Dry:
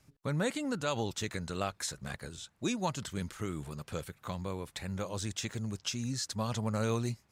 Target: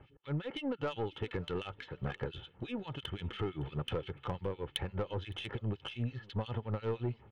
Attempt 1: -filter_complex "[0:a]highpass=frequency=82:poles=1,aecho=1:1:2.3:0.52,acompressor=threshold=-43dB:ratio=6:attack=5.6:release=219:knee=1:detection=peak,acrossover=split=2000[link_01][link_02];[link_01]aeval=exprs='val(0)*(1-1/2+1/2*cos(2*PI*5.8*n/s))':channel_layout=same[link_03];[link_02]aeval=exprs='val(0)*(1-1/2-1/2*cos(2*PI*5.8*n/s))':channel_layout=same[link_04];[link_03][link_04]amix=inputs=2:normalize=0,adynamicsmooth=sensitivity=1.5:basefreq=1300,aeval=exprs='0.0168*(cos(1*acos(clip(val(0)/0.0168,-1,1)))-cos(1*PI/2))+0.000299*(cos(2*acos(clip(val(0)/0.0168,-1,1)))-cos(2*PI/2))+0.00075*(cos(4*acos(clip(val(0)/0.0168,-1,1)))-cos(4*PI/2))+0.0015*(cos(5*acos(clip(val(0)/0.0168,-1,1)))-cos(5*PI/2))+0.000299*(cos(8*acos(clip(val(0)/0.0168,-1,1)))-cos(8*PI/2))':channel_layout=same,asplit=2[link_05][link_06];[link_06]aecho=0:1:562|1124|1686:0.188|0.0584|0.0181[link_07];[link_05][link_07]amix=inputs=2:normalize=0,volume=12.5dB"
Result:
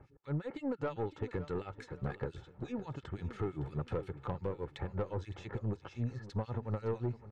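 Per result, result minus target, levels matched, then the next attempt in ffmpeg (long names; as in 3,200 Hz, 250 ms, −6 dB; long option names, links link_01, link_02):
4,000 Hz band −14.0 dB; echo-to-direct +9.5 dB
-filter_complex "[0:a]highpass=frequency=82:poles=1,aecho=1:1:2.3:0.52,acompressor=threshold=-43dB:ratio=6:attack=5.6:release=219:knee=1:detection=peak,lowpass=frequency=3100:width_type=q:width=9,acrossover=split=2000[link_01][link_02];[link_01]aeval=exprs='val(0)*(1-1/2+1/2*cos(2*PI*5.8*n/s))':channel_layout=same[link_03];[link_02]aeval=exprs='val(0)*(1-1/2-1/2*cos(2*PI*5.8*n/s))':channel_layout=same[link_04];[link_03][link_04]amix=inputs=2:normalize=0,adynamicsmooth=sensitivity=1.5:basefreq=1300,aeval=exprs='0.0168*(cos(1*acos(clip(val(0)/0.0168,-1,1)))-cos(1*PI/2))+0.000299*(cos(2*acos(clip(val(0)/0.0168,-1,1)))-cos(2*PI/2))+0.00075*(cos(4*acos(clip(val(0)/0.0168,-1,1)))-cos(4*PI/2))+0.0015*(cos(5*acos(clip(val(0)/0.0168,-1,1)))-cos(5*PI/2))+0.000299*(cos(8*acos(clip(val(0)/0.0168,-1,1)))-cos(8*PI/2))':channel_layout=same,asplit=2[link_05][link_06];[link_06]aecho=0:1:562|1124|1686:0.188|0.0584|0.0181[link_07];[link_05][link_07]amix=inputs=2:normalize=0,volume=12.5dB"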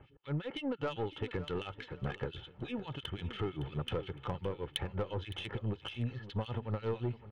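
echo-to-direct +9.5 dB
-filter_complex "[0:a]highpass=frequency=82:poles=1,aecho=1:1:2.3:0.52,acompressor=threshold=-43dB:ratio=6:attack=5.6:release=219:knee=1:detection=peak,lowpass=frequency=3100:width_type=q:width=9,acrossover=split=2000[link_01][link_02];[link_01]aeval=exprs='val(0)*(1-1/2+1/2*cos(2*PI*5.8*n/s))':channel_layout=same[link_03];[link_02]aeval=exprs='val(0)*(1-1/2-1/2*cos(2*PI*5.8*n/s))':channel_layout=same[link_04];[link_03][link_04]amix=inputs=2:normalize=0,adynamicsmooth=sensitivity=1.5:basefreq=1300,aeval=exprs='0.0168*(cos(1*acos(clip(val(0)/0.0168,-1,1)))-cos(1*PI/2))+0.000299*(cos(2*acos(clip(val(0)/0.0168,-1,1)))-cos(2*PI/2))+0.00075*(cos(4*acos(clip(val(0)/0.0168,-1,1)))-cos(4*PI/2))+0.0015*(cos(5*acos(clip(val(0)/0.0168,-1,1)))-cos(5*PI/2))+0.000299*(cos(8*acos(clip(val(0)/0.0168,-1,1)))-cos(8*PI/2))':channel_layout=same,asplit=2[link_05][link_06];[link_06]aecho=0:1:562|1124:0.0631|0.0196[link_07];[link_05][link_07]amix=inputs=2:normalize=0,volume=12.5dB"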